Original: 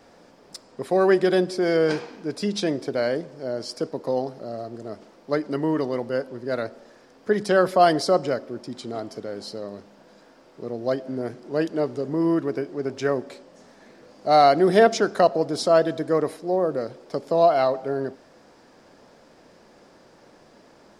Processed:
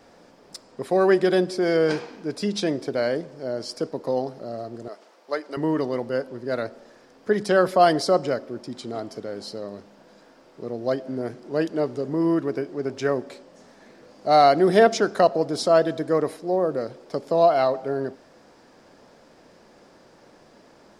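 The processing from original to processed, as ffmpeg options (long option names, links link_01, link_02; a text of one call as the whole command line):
ffmpeg -i in.wav -filter_complex "[0:a]asettb=1/sr,asplit=3[link_01][link_02][link_03];[link_01]atrim=end=4.884[link_04];[link_02]atrim=start=4.88:end=5.57,asetpts=PTS-STARTPTS,afade=type=in:duration=0.004:curve=qsin,afade=type=out:start_time=0.686:duration=0.004:curve=qsin,highpass=540[link_05];[link_03]atrim=start=5.566[link_06];[link_04][link_05]acrossfade=duration=0.004:curve1=hsin:curve2=qsin[link_07];[link_07][link_06]acrossfade=duration=0.004:curve1=qsin:curve2=hsin" out.wav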